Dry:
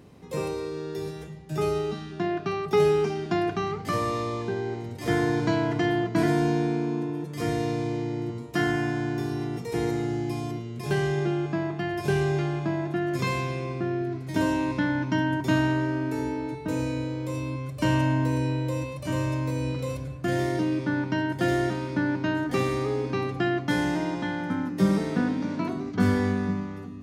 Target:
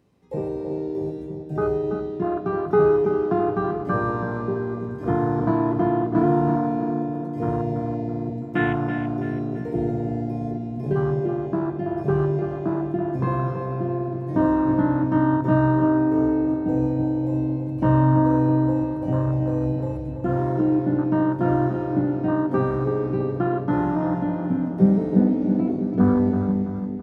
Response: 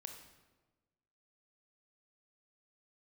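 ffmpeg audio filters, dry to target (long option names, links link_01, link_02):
-filter_complex "[0:a]acrossover=split=2600[link_01][link_02];[link_02]acompressor=threshold=-53dB:ratio=4:attack=1:release=60[link_03];[link_01][link_03]amix=inputs=2:normalize=0,afwtdn=0.0398,asplit=2[link_04][link_05];[link_05]adelay=16,volume=-11dB[link_06];[link_04][link_06]amix=inputs=2:normalize=0,asplit=2[link_07][link_08];[link_08]adelay=331,lowpass=frequency=4500:poles=1,volume=-7.5dB,asplit=2[link_09][link_10];[link_10]adelay=331,lowpass=frequency=4500:poles=1,volume=0.49,asplit=2[link_11][link_12];[link_12]adelay=331,lowpass=frequency=4500:poles=1,volume=0.49,asplit=2[link_13][link_14];[link_14]adelay=331,lowpass=frequency=4500:poles=1,volume=0.49,asplit=2[link_15][link_16];[link_16]adelay=331,lowpass=frequency=4500:poles=1,volume=0.49,asplit=2[link_17][link_18];[link_18]adelay=331,lowpass=frequency=4500:poles=1,volume=0.49[link_19];[link_07][link_09][link_11][link_13][link_15][link_17][link_19]amix=inputs=7:normalize=0,asplit=2[link_20][link_21];[1:a]atrim=start_sample=2205[link_22];[link_21][link_22]afir=irnorm=-1:irlink=0,volume=0dB[link_23];[link_20][link_23]amix=inputs=2:normalize=0"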